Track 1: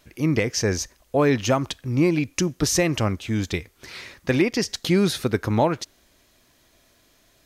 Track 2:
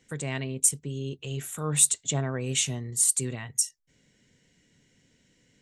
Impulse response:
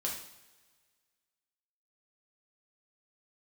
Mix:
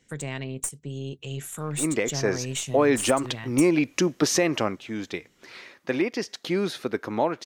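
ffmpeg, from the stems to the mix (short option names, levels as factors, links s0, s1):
-filter_complex "[0:a]highpass=260,highshelf=f=4800:g=-10.5,dynaudnorm=f=140:g=13:m=3.76,adelay=1600,volume=0.794,afade=t=out:st=4.43:d=0.4:silence=0.398107[s0];[1:a]acompressor=threshold=0.0447:ratio=8,aeval=exprs='(tanh(7.94*val(0)+0.5)-tanh(0.5))/7.94':c=same,volume=1.26[s1];[s0][s1]amix=inputs=2:normalize=0,alimiter=limit=0.316:level=0:latency=1:release=213"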